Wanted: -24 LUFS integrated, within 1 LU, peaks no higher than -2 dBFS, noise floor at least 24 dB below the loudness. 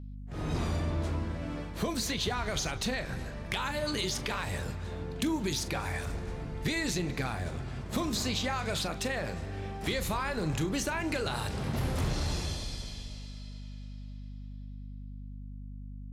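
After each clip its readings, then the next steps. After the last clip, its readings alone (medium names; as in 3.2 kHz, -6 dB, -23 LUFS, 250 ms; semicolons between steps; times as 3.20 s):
hum 50 Hz; highest harmonic 250 Hz; hum level -40 dBFS; loudness -33.5 LUFS; peak level -20.0 dBFS; loudness target -24.0 LUFS
-> hum notches 50/100/150/200/250 Hz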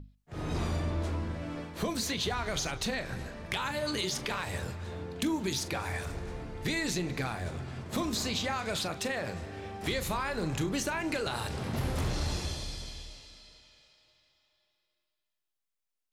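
hum not found; loudness -33.5 LUFS; peak level -20.5 dBFS; loudness target -24.0 LUFS
-> trim +9.5 dB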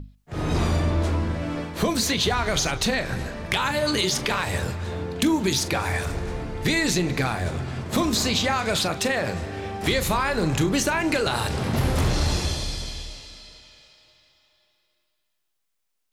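loudness -24.0 LUFS; peak level -11.0 dBFS; noise floor -75 dBFS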